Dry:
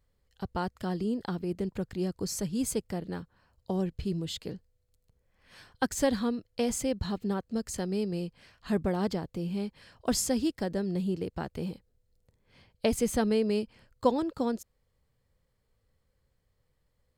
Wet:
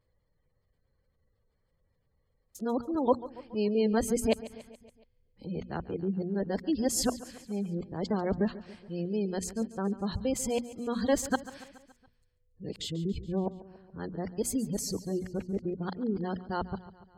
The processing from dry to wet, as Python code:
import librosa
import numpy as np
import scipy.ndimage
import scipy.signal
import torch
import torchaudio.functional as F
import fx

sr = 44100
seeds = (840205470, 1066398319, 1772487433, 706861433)

p1 = x[::-1].copy()
p2 = fx.hum_notches(p1, sr, base_hz=60, count=4)
p3 = fx.spec_gate(p2, sr, threshold_db=-30, keep='strong')
y = p3 + fx.echo_feedback(p3, sr, ms=141, feedback_pct=58, wet_db=-17.0, dry=0)